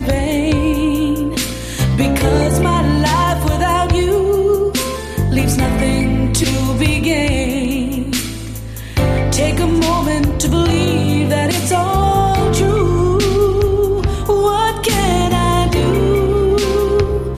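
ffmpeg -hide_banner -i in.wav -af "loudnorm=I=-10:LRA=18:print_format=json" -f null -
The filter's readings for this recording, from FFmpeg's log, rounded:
"input_i" : "-15.2",
"input_tp" : "-3.0",
"input_lra" : "1.7",
"input_thresh" : "-25.2",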